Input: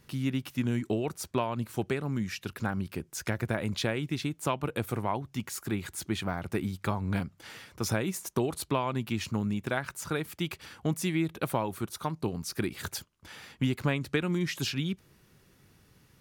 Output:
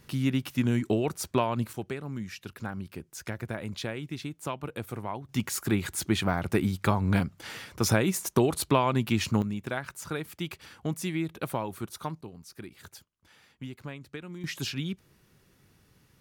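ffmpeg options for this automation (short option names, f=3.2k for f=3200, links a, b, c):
-af "asetnsamples=n=441:p=0,asendcmd='1.73 volume volume -4.5dB;5.29 volume volume 5.5dB;9.42 volume volume -2dB;12.21 volume volume -12dB;14.44 volume volume -1.5dB',volume=3.5dB"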